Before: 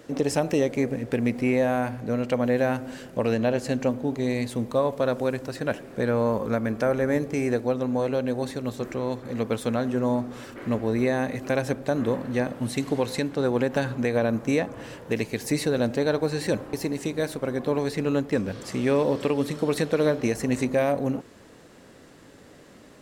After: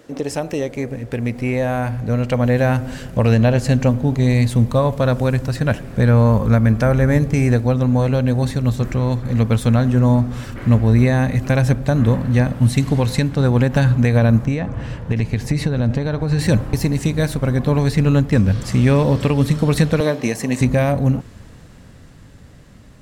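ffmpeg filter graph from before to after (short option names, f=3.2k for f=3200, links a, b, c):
-filter_complex "[0:a]asettb=1/sr,asplit=3[a][b][c];[a]atrim=end=14.454[d];[b]atrim=start=14.45:end=16.39,asetpts=PTS-STARTPTS,afade=t=in:d=0.004:c=qsin,afade=t=out:st=1.936:d=0.004:c=qsin,aemphasis=mode=reproduction:type=50kf,acompressor=threshold=-25dB:ratio=4:attack=3.2:release=140:knee=1:detection=peak[e];[c]atrim=start=16.386[f];[d][e]acrossfade=d=0.004:c1=hsin:c2=qsin[g];[g][f]acrossfade=d=0.004:c1=qsin:c2=hsin,asettb=1/sr,asplit=3[h][i][j];[h]atrim=end=20.004[k];[i]atrim=start=20:end=20.61,asetpts=PTS-STARTPTS,afade=t=in:d=0.004:c=qsin,afade=t=out:st=0.606:d=0.004:c=qsin,highpass=270,bandreject=f=1.4k:w=6.2[l];[j]atrim=start=20.606[m];[k][l]acrossfade=d=0.004:c1=hsin:c2=qsin[n];[n][m]acrossfade=d=0.004:c1=qsin:c2=hsin,asubboost=boost=9:cutoff=120,dynaudnorm=f=360:g=11:m=8dB,volume=1dB"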